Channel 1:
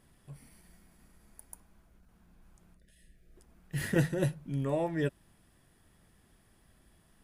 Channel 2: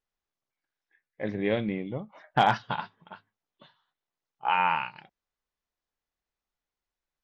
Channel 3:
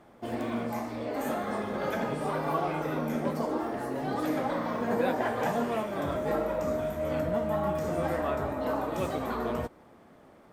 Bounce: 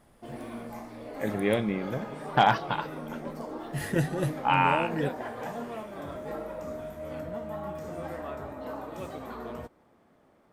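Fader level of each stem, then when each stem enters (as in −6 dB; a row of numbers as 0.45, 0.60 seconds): +0.5, +1.0, −7.5 decibels; 0.00, 0.00, 0.00 seconds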